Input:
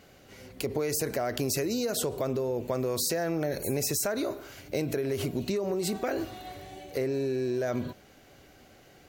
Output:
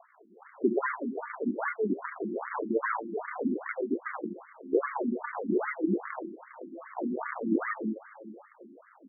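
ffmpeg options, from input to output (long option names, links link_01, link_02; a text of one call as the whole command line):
ffmpeg -i in.wav -af "tiltshelf=frequency=1200:gain=9.5,acompressor=mode=upward:threshold=-44dB:ratio=2.5,aresample=8000,acrusher=samples=15:mix=1:aa=0.000001:lfo=1:lforange=24:lforate=1,aresample=44100,flanger=delay=9.3:depth=3.3:regen=-66:speed=1.1:shape=triangular,asetrate=39289,aresample=44100,atempo=1.12246,aecho=1:1:249|498|747|996|1245:0.126|0.073|0.0424|0.0246|0.0142,afftfilt=real='re*between(b*sr/1024,250*pow(1600/250,0.5+0.5*sin(2*PI*2.5*pts/sr))/1.41,250*pow(1600/250,0.5+0.5*sin(2*PI*2.5*pts/sr))*1.41)':imag='im*between(b*sr/1024,250*pow(1600/250,0.5+0.5*sin(2*PI*2.5*pts/sr))/1.41,250*pow(1600/250,0.5+0.5*sin(2*PI*2.5*pts/sr))*1.41)':win_size=1024:overlap=0.75,volume=6.5dB" out.wav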